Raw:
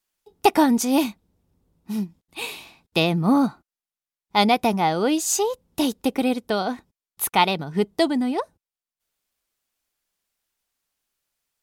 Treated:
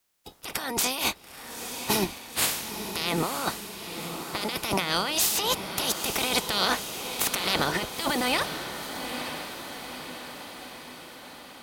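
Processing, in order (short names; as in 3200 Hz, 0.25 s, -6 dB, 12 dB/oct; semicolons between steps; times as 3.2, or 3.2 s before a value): spectral limiter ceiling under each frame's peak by 27 dB; negative-ratio compressor -28 dBFS, ratio -1; diffused feedback echo 0.93 s, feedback 60%, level -8 dB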